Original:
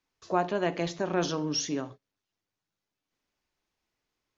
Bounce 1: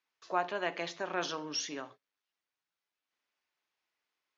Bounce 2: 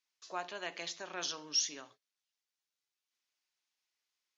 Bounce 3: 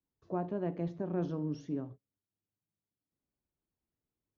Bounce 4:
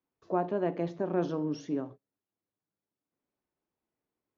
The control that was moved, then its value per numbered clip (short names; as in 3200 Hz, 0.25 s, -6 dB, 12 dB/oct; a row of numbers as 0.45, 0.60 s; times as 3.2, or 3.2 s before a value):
band-pass, frequency: 2000, 5600, 110, 300 Hz